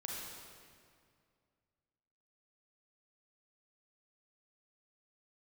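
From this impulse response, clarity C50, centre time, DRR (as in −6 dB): −1.5 dB, 119 ms, −3.5 dB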